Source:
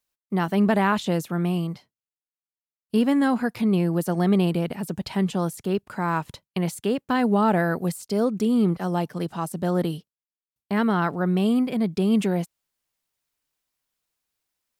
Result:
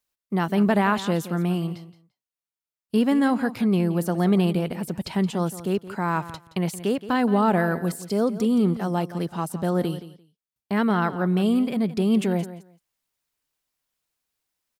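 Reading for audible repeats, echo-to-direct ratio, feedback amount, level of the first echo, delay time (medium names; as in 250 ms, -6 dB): 2, -14.5 dB, 16%, -14.5 dB, 172 ms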